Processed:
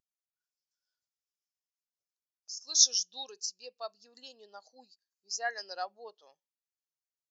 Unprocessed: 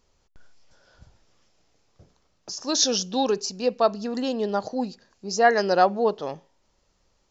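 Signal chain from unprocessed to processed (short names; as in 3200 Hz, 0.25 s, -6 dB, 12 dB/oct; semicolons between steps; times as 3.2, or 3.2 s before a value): differentiator; spectral expander 1.5:1; gain +2 dB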